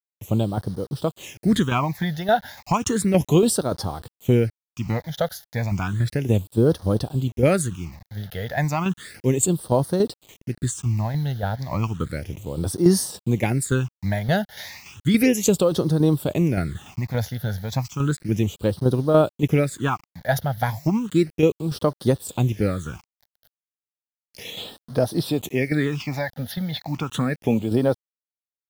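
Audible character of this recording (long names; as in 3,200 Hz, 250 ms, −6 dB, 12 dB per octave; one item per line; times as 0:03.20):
tremolo saw down 3.5 Hz, depth 55%
a quantiser's noise floor 8 bits, dither none
phaser sweep stages 8, 0.33 Hz, lowest notch 320–2,400 Hz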